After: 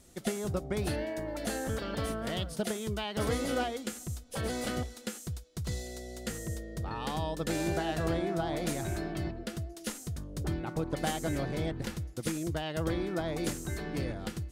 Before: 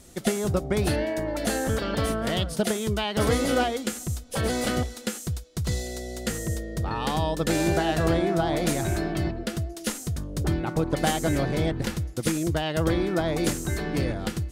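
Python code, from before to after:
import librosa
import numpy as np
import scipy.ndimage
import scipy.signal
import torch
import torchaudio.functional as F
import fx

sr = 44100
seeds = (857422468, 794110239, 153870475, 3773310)

y = fx.quant_float(x, sr, bits=6, at=(0.76, 3.37))
y = y * librosa.db_to_amplitude(-8.0)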